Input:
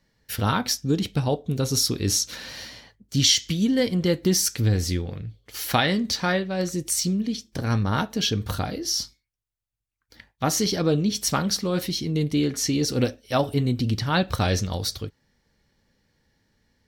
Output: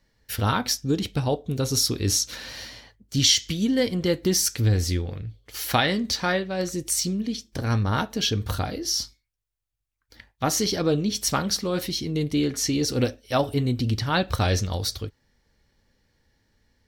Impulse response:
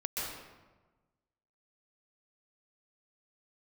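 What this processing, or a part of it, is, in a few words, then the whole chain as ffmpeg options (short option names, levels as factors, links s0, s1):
low shelf boost with a cut just above: -af "lowshelf=f=71:g=6,equalizer=f=170:t=o:w=0.78:g=-4.5"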